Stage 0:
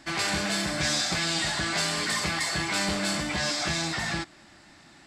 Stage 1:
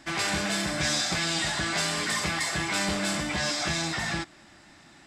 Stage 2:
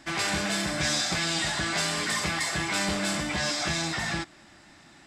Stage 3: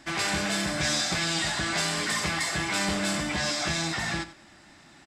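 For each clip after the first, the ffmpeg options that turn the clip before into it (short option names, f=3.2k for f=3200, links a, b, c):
-af "bandreject=f=4.4k:w=15"
-af anull
-af "aecho=1:1:91:0.178"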